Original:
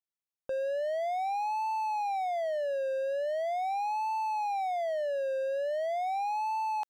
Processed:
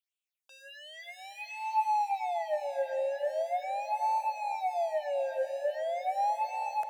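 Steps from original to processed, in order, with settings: phaser stages 6, 1.4 Hz, lowest notch 120–1600 Hz; high-pass sweep 2500 Hz -> 120 Hz, 1.48–2.15; diffused feedback echo 0.455 s, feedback 47%, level -10.5 dB; gain +2.5 dB

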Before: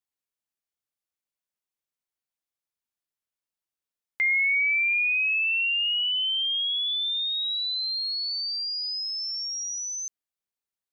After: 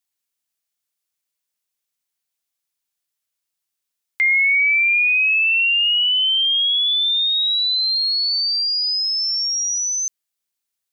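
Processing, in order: high shelf 2000 Hz +10 dB; gain +1.5 dB

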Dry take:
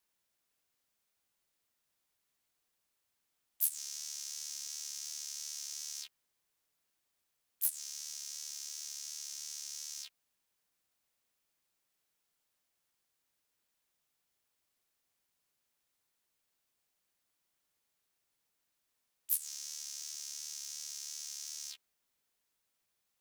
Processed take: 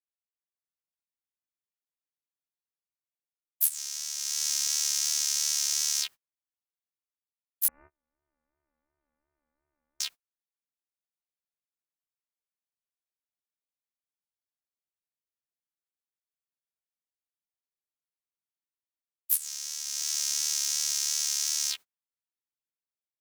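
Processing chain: 7.68–10 inverted band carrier 2800 Hz; gate -55 dBFS, range -35 dB; AGC gain up to 16 dB; dynamic EQ 1400 Hz, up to +3 dB, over -58 dBFS, Q 0.87; gain -1 dB

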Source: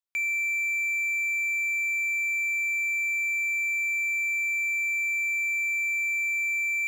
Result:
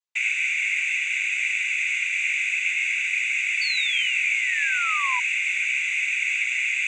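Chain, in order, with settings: Bessel high-pass 660 Hz, order 2; noise vocoder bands 16; painted sound fall, 3.61–5.2, 960–4600 Hz -32 dBFS; gain +3 dB

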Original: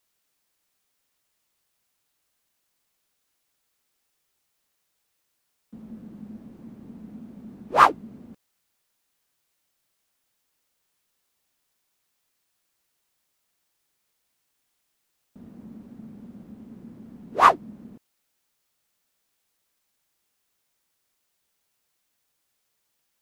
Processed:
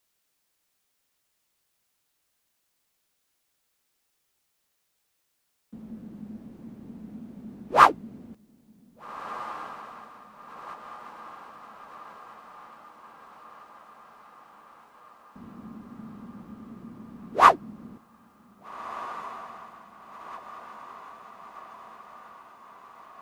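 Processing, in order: diffused feedback echo 1.659 s, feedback 64%, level -15.5 dB

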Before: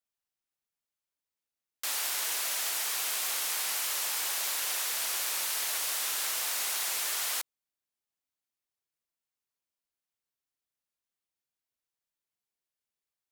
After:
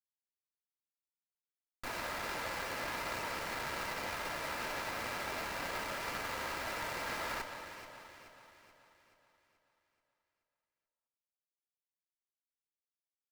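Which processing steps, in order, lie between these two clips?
high shelf 2200 Hz +3 dB; comb 2.8 ms, depth 59%; in parallel at +3 dB: limiter -27 dBFS, peak gain reduction 11 dB; on the sum: flange 1.6 Hz, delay 8.3 ms, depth 7.7 ms, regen -38%; mistuned SSB -140 Hz 450–3100 Hz; bit-crush 7-bit; echo with dull and thin repeats by turns 0.215 s, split 1300 Hz, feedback 69%, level -6.5 dB; on a send at -9 dB: reverb RT60 2.7 s, pre-delay 4 ms; on the sum: running maximum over 9 samples; gain -1.5 dB

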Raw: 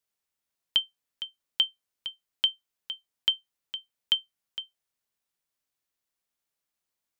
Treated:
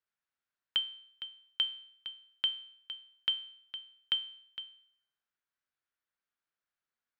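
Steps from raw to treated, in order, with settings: LPF 4100 Hz 12 dB/oct; bell 1500 Hz +9.5 dB 0.76 oct; resonator 120 Hz, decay 0.65 s, harmonics all, mix 60%

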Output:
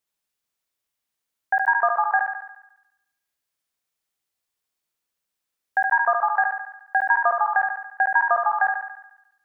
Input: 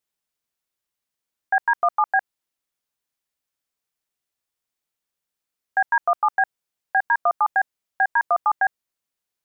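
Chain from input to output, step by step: thinning echo 71 ms, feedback 61%, high-pass 450 Hz, level -4 dB; ending taper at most 160 dB/s

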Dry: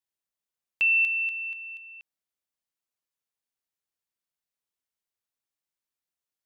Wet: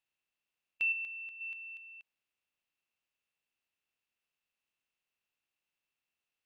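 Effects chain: per-bin compression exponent 0.6; 0.92–1.41 high shelf 2000 Hz -8.5 dB; upward expander 1.5:1, over -42 dBFS; gain -8.5 dB

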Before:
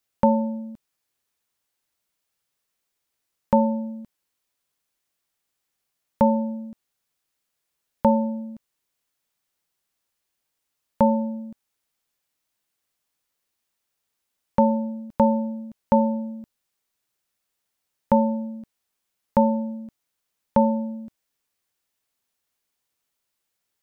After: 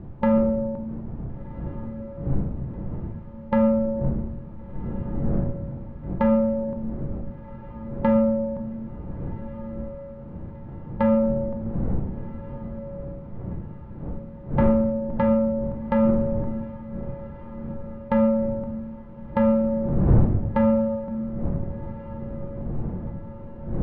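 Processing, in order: per-bin compression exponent 0.6; wind noise 180 Hz -32 dBFS; LPF 1500 Hz 12 dB/oct; in parallel at -2 dB: compressor, threshold -30 dBFS, peak gain reduction 18.5 dB; on the sum: soft clip -10 dBFS, distortion -15 dB; diffused feedback echo 1.443 s, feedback 57%, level -15.5 dB; shoebox room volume 330 m³, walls mixed, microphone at 0.74 m; gain -2 dB

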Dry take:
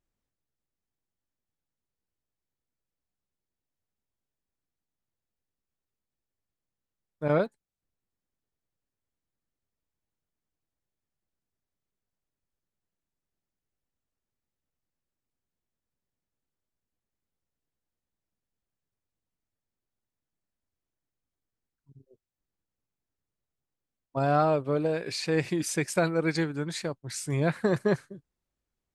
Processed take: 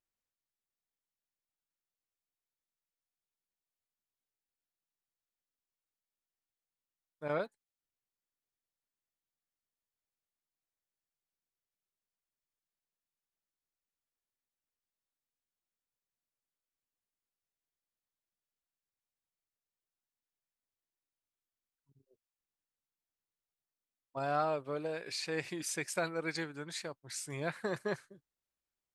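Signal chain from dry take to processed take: low shelf 430 Hz -11.5 dB; gain -5 dB

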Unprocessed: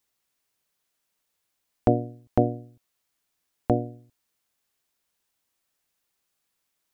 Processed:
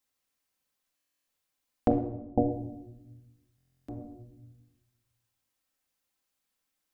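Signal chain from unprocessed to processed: 1.91–2.51 elliptic low-pass 860 Hz, stop band 40 dB; shoebox room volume 3400 m³, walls furnished, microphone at 2.1 m; stuck buffer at 0.95/3.56, samples 1024, times 13; gain -5.5 dB

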